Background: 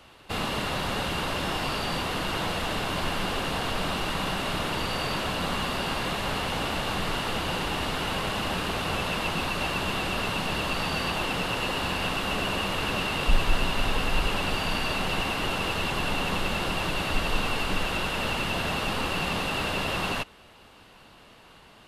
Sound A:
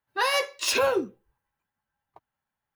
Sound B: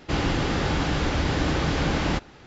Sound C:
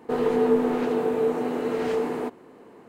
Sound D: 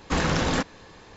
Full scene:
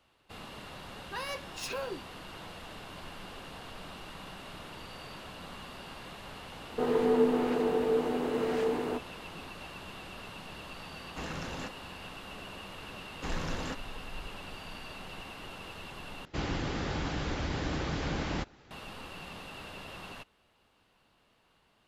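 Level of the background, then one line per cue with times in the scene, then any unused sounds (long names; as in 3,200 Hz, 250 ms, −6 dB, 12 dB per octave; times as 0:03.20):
background −16.5 dB
0:00.95: mix in A −14 dB
0:06.69: mix in C −4.5 dB
0:11.06: mix in D −16 dB
0:13.12: mix in D −13.5 dB
0:16.25: overwrite with B −8 dB + harmonic and percussive parts rebalanced harmonic −3 dB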